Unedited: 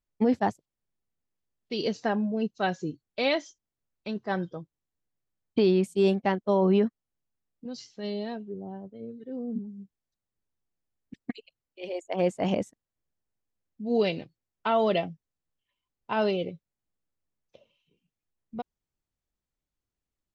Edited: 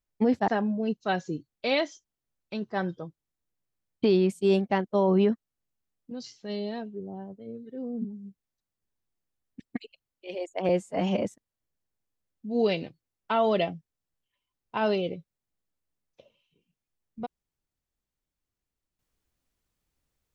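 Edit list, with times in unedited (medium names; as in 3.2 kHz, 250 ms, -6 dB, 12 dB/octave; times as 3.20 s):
0.48–2.02 s: delete
12.23–12.60 s: stretch 1.5×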